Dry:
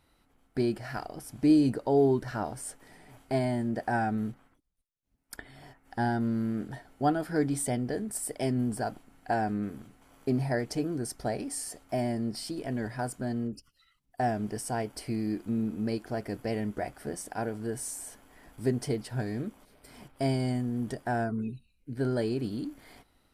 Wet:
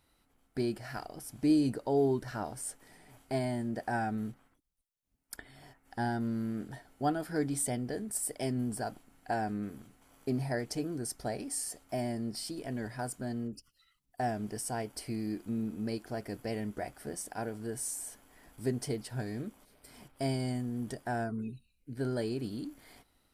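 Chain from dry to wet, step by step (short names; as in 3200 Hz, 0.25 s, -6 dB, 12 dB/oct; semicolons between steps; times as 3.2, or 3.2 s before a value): high shelf 4400 Hz +6 dB; gain -4.5 dB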